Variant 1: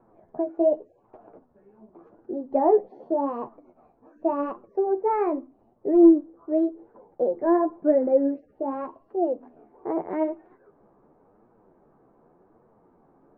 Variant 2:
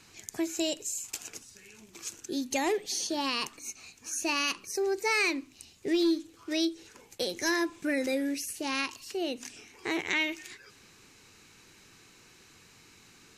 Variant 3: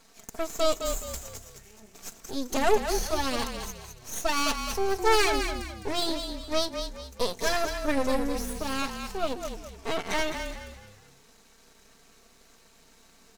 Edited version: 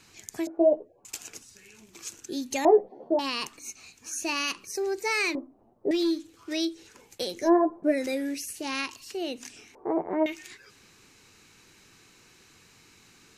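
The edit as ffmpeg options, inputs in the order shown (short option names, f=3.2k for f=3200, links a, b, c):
-filter_complex "[0:a]asplit=5[a][b][c][d][e];[1:a]asplit=6[f][g][h][i][j][k];[f]atrim=end=0.472[l];[a]atrim=start=0.468:end=1.052[m];[g]atrim=start=1.048:end=2.652[n];[b]atrim=start=2.648:end=3.192[o];[h]atrim=start=3.188:end=5.352[p];[c]atrim=start=5.348:end=5.912[q];[i]atrim=start=5.908:end=7.5[r];[d]atrim=start=7.34:end=7.99[s];[j]atrim=start=7.83:end=9.752[t];[e]atrim=start=9.748:end=10.262[u];[k]atrim=start=10.258[v];[l][m]acrossfade=d=0.004:c1=hsin:c2=hsin[w];[w][n]acrossfade=d=0.004:c1=hsin:c2=hsin[x];[x][o]acrossfade=d=0.004:c1=hsin:c2=hsin[y];[y][p]acrossfade=d=0.004:c1=hsin:c2=hsin[z];[z][q]acrossfade=d=0.004:c1=hsin:c2=hsin[aa];[aa][r]acrossfade=d=0.004:c1=hsin:c2=hsin[ab];[ab][s]acrossfade=d=0.16:c1=tri:c2=tri[ac];[ac][t]acrossfade=d=0.16:c1=tri:c2=tri[ad];[ad][u]acrossfade=d=0.004:c1=hsin:c2=hsin[ae];[ae][v]acrossfade=d=0.004:c1=hsin:c2=hsin"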